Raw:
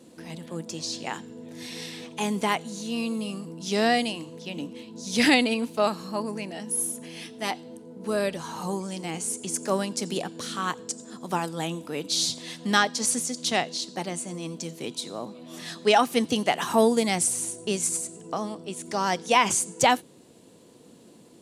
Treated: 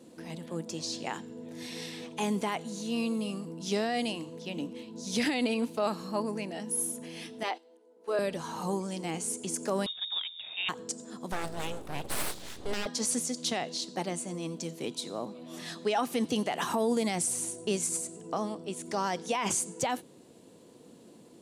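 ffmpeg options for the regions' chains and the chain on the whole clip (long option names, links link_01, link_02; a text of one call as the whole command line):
ffmpeg -i in.wav -filter_complex "[0:a]asettb=1/sr,asplit=3[link_01][link_02][link_03];[link_01]atrim=end=7.434[link_04];[link_02]atrim=start=7.43:end=8.19,asetpts=PTS-STARTPTS,afade=type=in:duration=0.004:curve=qsin,afade=type=out:start_time=0.756:duration=0.004:curve=qsin,highpass=frequency=380:width=0.5412,highpass=frequency=380:width=1.3066,acrossover=split=4800[link_05][link_06];[link_06]acompressor=threshold=-55dB:ratio=4:attack=1:release=60[link_07];[link_05][link_07]amix=inputs=2:normalize=0,agate=range=-11dB:threshold=-42dB:ratio=16:release=100:detection=peak[link_08];[link_03]atrim=start=8.186[link_09];[link_04][link_08]acrossfade=duration=0.004:curve1=hsin:curve2=qsin[link_10];[link_10][link_09]acrossfade=duration=0.004:curve1=qsin:curve2=hsin,asettb=1/sr,asplit=3[link_11][link_12][link_13];[link_11]atrim=end=9.864[link_14];[link_12]atrim=start=9.86:end=10.69,asetpts=PTS-STARTPTS,afade=type=in:duration=0.004:curve=qsin,afade=type=out:start_time=0.826:duration=0.004:curve=qsin,adynamicsmooth=sensitivity=1.5:basefreq=1200,lowpass=frequency=3300:width_type=q:width=0.5098,lowpass=frequency=3300:width_type=q:width=0.6013,lowpass=frequency=3300:width_type=q:width=0.9,lowpass=frequency=3300:width_type=q:width=2.563,afreqshift=-3900[link_15];[link_13]atrim=start=10.686[link_16];[link_14][link_15]acrossfade=duration=0.004:curve1=hsin:curve2=qsin[link_17];[link_17][link_16]acrossfade=duration=0.004:curve1=qsin:curve2=hsin,asettb=1/sr,asplit=3[link_18][link_19][link_20];[link_18]atrim=end=11.324[link_21];[link_19]atrim=start=11.32:end=12.86,asetpts=PTS-STARTPTS,afade=type=in:duration=0.004:curve=qsin,afade=type=out:start_time=1.536:duration=0.004:curve=qsin,asuperstop=centerf=800:order=4:qfactor=5.9,aeval=exprs='val(0)+0.00708*(sin(2*PI*60*n/s)+sin(2*PI*2*60*n/s)/2+sin(2*PI*3*60*n/s)/3+sin(2*PI*4*60*n/s)/4+sin(2*PI*5*60*n/s)/5)':channel_layout=same,aeval=exprs='abs(val(0))':channel_layout=same[link_22];[link_20]atrim=start=12.856[link_23];[link_21][link_22]acrossfade=duration=0.004:curve1=hsin:curve2=qsin[link_24];[link_24][link_23]acrossfade=duration=0.004:curve1=qsin:curve2=hsin,equalizer=frequency=450:width_type=o:width=2.9:gain=3,alimiter=limit=-15.5dB:level=0:latency=1:release=48,volume=-4dB" out.wav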